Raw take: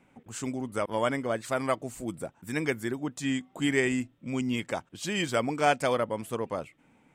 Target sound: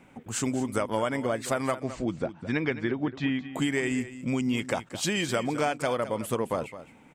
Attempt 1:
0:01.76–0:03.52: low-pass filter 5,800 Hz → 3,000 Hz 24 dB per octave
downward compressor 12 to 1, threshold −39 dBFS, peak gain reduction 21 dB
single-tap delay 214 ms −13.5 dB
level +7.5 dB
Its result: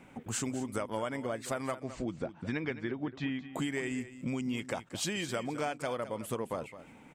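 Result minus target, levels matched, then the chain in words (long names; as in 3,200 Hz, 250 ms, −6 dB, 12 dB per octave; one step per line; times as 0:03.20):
downward compressor: peak gain reduction +7.5 dB
0:01.76–0:03.52: low-pass filter 5,800 Hz → 3,000 Hz 24 dB per octave
downward compressor 12 to 1, threshold −31 dBFS, peak gain reduction 14 dB
single-tap delay 214 ms −13.5 dB
level +7.5 dB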